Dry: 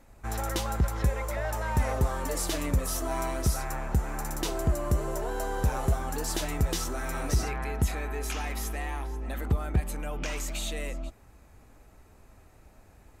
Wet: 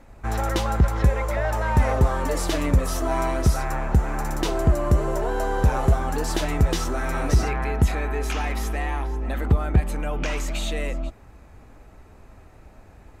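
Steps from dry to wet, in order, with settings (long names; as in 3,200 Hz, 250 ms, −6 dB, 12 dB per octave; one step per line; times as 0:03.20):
high-shelf EQ 5,600 Hz −11.5 dB
level +7.5 dB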